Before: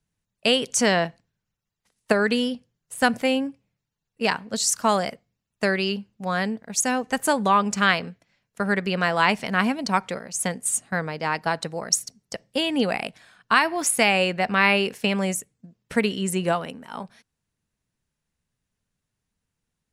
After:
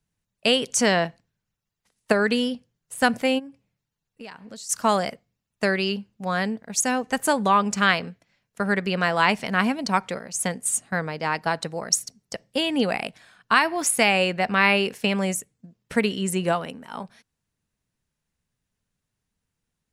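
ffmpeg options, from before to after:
-filter_complex "[0:a]asplit=3[s0][s1][s2];[s0]afade=t=out:st=3.38:d=0.02[s3];[s1]acompressor=threshold=0.0126:ratio=5:attack=3.2:release=140:knee=1:detection=peak,afade=t=in:st=3.38:d=0.02,afade=t=out:st=4.69:d=0.02[s4];[s2]afade=t=in:st=4.69:d=0.02[s5];[s3][s4][s5]amix=inputs=3:normalize=0"

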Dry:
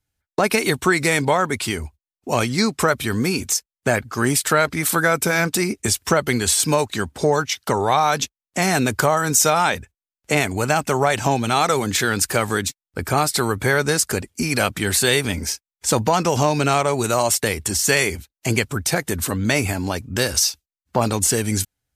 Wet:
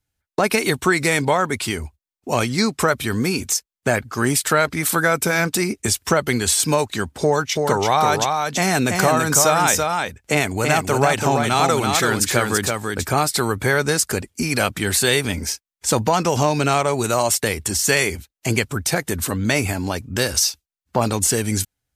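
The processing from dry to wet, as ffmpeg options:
-filter_complex "[0:a]asettb=1/sr,asplit=3[s0][s1][s2];[s0]atrim=end=7.224[s3];[s1]atrim=start=7.22:end=13.19,asetpts=PTS-STARTPTS,afade=t=in:d=0.004:c=qsin,afade=t=out:st=5.966:d=0.004:c=qsin,aecho=1:1:333:0.631,atrim=end_sample=263277[s4];[s2]atrim=start=13.186[s5];[s3][s4]acrossfade=d=0.004:c1=hsin:c2=qsin[s6];[s6][s5]acrossfade=d=0.004:c1=qsin:c2=hsin"

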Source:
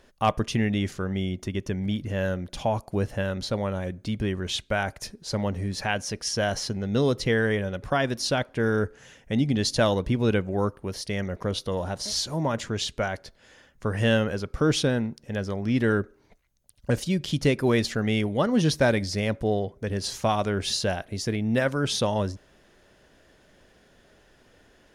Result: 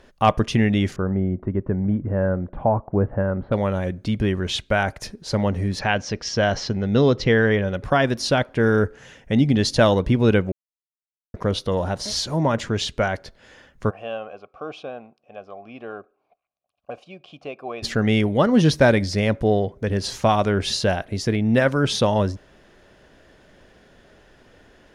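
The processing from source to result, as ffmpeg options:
-filter_complex "[0:a]asettb=1/sr,asplit=3[s0][s1][s2];[s0]atrim=end=0.964[s3];[s1]atrim=start=0.96:end=3.52,asetpts=PTS-STARTPTS,afade=t=in:d=0.004:c=qsin,afade=t=out:st=2.556:d=0.004:c=qsin,lowpass=f=1400:w=0.5412,lowpass=f=1400:w=1.3066[s4];[s2]atrim=start=3.516[s5];[s3][s4]acrossfade=d=0.004:c1=hsin:c2=qsin[s6];[s6][s5]acrossfade=d=0.004:c1=qsin:c2=hsin,asettb=1/sr,asplit=3[s7][s8][s9];[s7]atrim=end=5.794[s10];[s8]atrim=start=5.79:end=7.68,asetpts=PTS-STARTPTS,afade=t=in:d=0.004:c=qsin,afade=t=out:st=1.886:d=0.004:c=qsin,lowpass=f=6200:w=0.5412,lowpass=f=6200:w=1.3066[s11];[s9]atrim=start=7.676[s12];[s10][s11]acrossfade=d=0.004:c1=hsin:c2=qsin[s13];[s13][s12]acrossfade=d=0.004:c1=qsin:c2=hsin,asplit=3[s14][s15][s16];[s14]afade=t=out:st=13.89:d=0.02[s17];[s15]asplit=3[s18][s19][s20];[s18]bandpass=f=730:t=q:w=8,volume=1[s21];[s19]bandpass=f=1090:t=q:w=8,volume=0.501[s22];[s20]bandpass=f=2440:t=q:w=8,volume=0.355[s23];[s21][s22][s23]amix=inputs=3:normalize=0,afade=t=in:st=13.89:d=0.02,afade=t=out:st=17.82:d=0.02[s24];[s16]afade=t=in:st=17.82:d=0.02[s25];[s17][s24][s25]amix=inputs=3:normalize=0,asplit=3[s26][s27][s28];[s26]atrim=end=10.52,asetpts=PTS-STARTPTS,afade=t=out:st=10.516:d=0.004:c=hsin[s29];[s27]atrim=start=10.52:end=11.34,asetpts=PTS-STARTPTS,volume=0[s30];[s28]atrim=start=11.34,asetpts=PTS-STARTPTS,afade=t=in:d=0.004:c=hsin[s31];[s29][s30][s31]concat=n=3:v=0:a=1,highshelf=f=5800:g=-9,volume=2"

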